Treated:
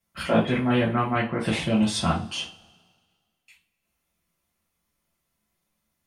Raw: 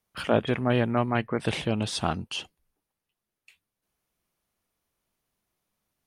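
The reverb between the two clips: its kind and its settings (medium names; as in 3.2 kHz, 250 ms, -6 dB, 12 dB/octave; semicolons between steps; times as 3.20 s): two-slope reverb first 0.27 s, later 1.7 s, from -26 dB, DRR -7 dB; trim -4.5 dB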